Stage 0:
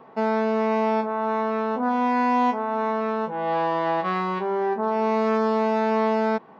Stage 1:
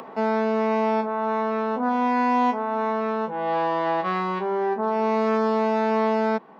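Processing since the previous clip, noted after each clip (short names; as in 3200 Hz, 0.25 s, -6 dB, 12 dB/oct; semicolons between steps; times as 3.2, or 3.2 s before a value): steep high-pass 160 Hz; upward compressor, threshold -32 dBFS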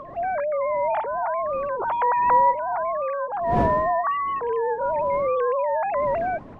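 sine-wave speech; wind noise 390 Hz -37 dBFS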